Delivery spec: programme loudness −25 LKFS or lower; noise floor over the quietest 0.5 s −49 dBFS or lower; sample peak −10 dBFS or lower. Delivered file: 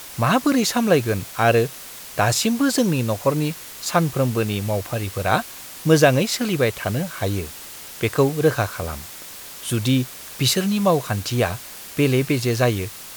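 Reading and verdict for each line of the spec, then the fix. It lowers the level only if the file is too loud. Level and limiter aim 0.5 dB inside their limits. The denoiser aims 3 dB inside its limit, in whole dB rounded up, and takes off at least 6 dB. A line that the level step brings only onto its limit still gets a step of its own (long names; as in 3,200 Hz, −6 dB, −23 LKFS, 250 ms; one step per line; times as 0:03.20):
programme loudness −21.0 LKFS: out of spec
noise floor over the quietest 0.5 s −38 dBFS: out of spec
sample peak −2.0 dBFS: out of spec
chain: broadband denoise 10 dB, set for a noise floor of −38 dBFS
level −4.5 dB
brickwall limiter −10.5 dBFS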